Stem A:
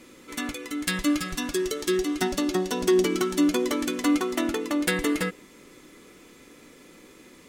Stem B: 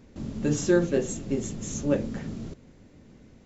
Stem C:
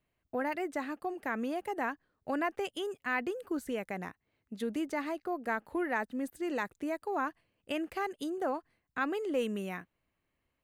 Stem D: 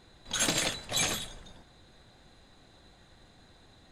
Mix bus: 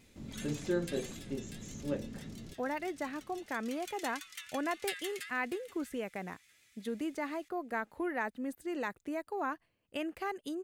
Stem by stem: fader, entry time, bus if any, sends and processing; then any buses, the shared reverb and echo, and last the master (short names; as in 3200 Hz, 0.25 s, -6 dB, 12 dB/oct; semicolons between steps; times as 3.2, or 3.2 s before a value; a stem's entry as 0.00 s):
-10.5 dB, 0.00 s, no send, echo send -15.5 dB, inverse Chebyshev high-pass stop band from 400 Hz, stop band 70 dB; vibrato 7.6 Hz 53 cents; auto duck -14 dB, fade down 1.60 s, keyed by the second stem
-11.0 dB, 0.00 s, no send, no echo send, de-esser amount 90%
-2.5 dB, 2.25 s, no send, no echo send, dry
-16.5 dB, 0.00 s, no send, echo send -13 dB, compressor, threshold -31 dBFS, peak gain reduction 7.5 dB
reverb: off
echo: feedback echo 0.641 s, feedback 28%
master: dry